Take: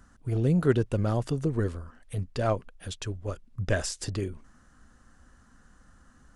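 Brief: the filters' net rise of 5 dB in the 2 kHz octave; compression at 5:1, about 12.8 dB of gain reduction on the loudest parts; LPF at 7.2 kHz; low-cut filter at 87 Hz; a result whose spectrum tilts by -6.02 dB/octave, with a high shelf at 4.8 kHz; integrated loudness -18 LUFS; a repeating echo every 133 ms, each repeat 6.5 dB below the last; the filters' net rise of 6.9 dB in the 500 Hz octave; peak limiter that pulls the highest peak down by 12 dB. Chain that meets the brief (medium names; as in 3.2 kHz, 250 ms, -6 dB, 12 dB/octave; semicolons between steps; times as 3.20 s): high-pass 87 Hz; low-pass 7.2 kHz; peaking EQ 500 Hz +8.5 dB; peaking EQ 2 kHz +7.5 dB; treble shelf 4.8 kHz -9 dB; compression 5:1, threshold -27 dBFS; peak limiter -27.5 dBFS; feedback delay 133 ms, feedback 47%, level -6.5 dB; trim +19.5 dB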